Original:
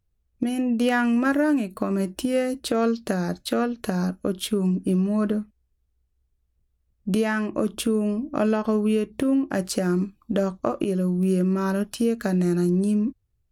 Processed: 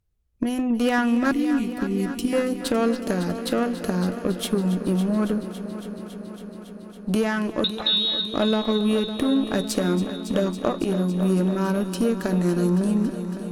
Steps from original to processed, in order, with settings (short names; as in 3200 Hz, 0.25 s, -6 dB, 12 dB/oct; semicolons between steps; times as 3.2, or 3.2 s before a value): added harmonics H 8 -25 dB, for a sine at -9 dBFS; 1.31–2.33 Chebyshev band-stop 410–2100 Hz, order 4; 7.64–8.34 inverted band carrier 4000 Hz; multi-head echo 0.278 s, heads first and second, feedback 73%, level -15 dB